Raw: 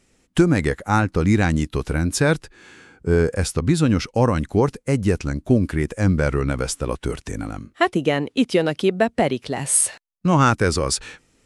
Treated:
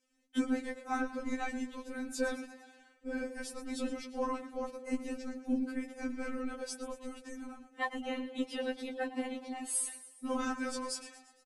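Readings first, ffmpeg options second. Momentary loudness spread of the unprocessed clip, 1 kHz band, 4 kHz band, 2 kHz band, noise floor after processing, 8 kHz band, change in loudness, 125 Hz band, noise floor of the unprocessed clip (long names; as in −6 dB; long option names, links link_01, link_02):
8 LU, −16.0 dB, −16.0 dB, −15.0 dB, −65 dBFS, −16.0 dB, −17.0 dB, below −40 dB, −63 dBFS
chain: -filter_complex "[0:a]afftfilt=real='hypot(re,im)*cos(2*PI*random(0))':imag='hypot(re,im)*sin(2*PI*random(1))':win_size=512:overlap=0.75,asplit=6[link_01][link_02][link_03][link_04][link_05][link_06];[link_02]adelay=115,afreqshift=52,volume=-13.5dB[link_07];[link_03]adelay=230,afreqshift=104,volume=-18.9dB[link_08];[link_04]adelay=345,afreqshift=156,volume=-24.2dB[link_09];[link_05]adelay=460,afreqshift=208,volume=-29.6dB[link_10];[link_06]adelay=575,afreqshift=260,volume=-34.9dB[link_11];[link_01][link_07][link_08][link_09][link_10][link_11]amix=inputs=6:normalize=0,afftfilt=real='re*3.46*eq(mod(b,12),0)':imag='im*3.46*eq(mod(b,12),0)':win_size=2048:overlap=0.75,volume=-8dB"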